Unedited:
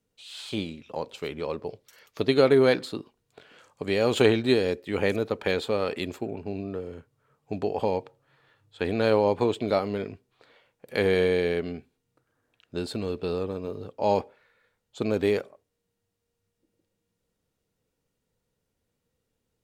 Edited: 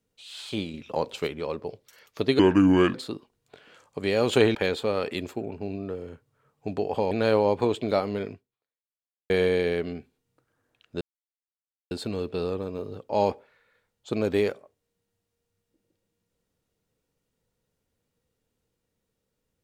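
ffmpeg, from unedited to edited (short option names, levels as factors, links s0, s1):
-filter_complex "[0:a]asplit=9[s0][s1][s2][s3][s4][s5][s6][s7][s8];[s0]atrim=end=0.742[s9];[s1]atrim=start=0.738:end=1.272,asetpts=PTS-STARTPTS,volume=1.78[s10];[s2]atrim=start=1.268:end=2.394[s11];[s3]atrim=start=2.39:end=2.78,asetpts=PTS-STARTPTS,asetrate=31311,aresample=44100[s12];[s4]atrim=start=2.776:end=4.392[s13];[s5]atrim=start=5.398:end=7.962[s14];[s6]atrim=start=8.898:end=11.09,asetpts=PTS-STARTPTS,afade=t=out:st=1.212:d=0.98:c=exp[s15];[s7]atrim=start=11.09:end=12.8,asetpts=PTS-STARTPTS,afade=t=in:d=0.004:c=hsin,afade=t=out:st=1.706:d=0.004:c=hsin,apad=pad_dur=0.9[s16];[s8]atrim=start=12.8,asetpts=PTS-STARTPTS,afade=t=in:d=0.004:c=hsin[s17];[s9][s10]acrossfade=d=0.004:c1=hsin:c2=hsin[s18];[s18][s11]acrossfade=d=0.004:c1=hsin:c2=hsin[s19];[s19][s12]acrossfade=d=0.004:c1=hsin:c2=hsin[s20];[s20][s13]acrossfade=d=0.004:c1=hsin:c2=hsin[s21];[s21][s14]acrossfade=d=0.004:c1=hsin:c2=hsin[s22];[s15][s16][s17]concat=n=3:v=0:a=1[s23];[s22][s23]acrossfade=d=0.004:c1=hsin:c2=hsin"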